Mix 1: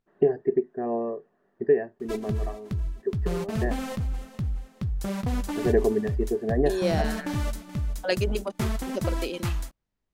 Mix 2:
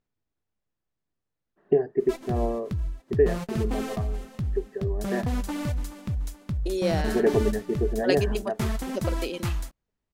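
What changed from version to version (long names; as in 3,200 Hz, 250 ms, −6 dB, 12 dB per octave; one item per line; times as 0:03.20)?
first voice: entry +1.50 s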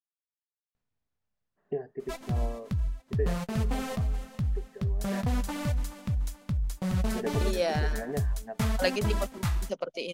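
first voice −8.5 dB
second voice: entry +0.75 s
master: add parametric band 340 Hz −9.5 dB 0.45 octaves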